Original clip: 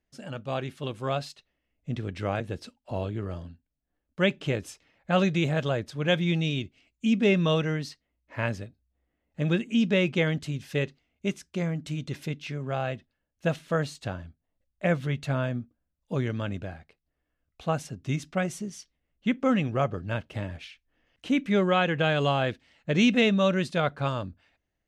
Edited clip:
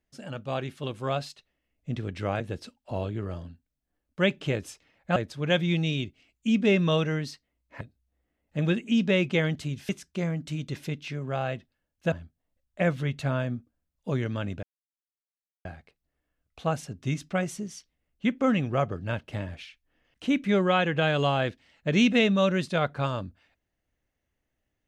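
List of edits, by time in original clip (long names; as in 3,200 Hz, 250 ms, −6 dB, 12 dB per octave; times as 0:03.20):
0:05.16–0:05.74: remove
0:08.39–0:08.64: remove
0:10.72–0:11.28: remove
0:13.51–0:14.16: remove
0:16.67: splice in silence 1.02 s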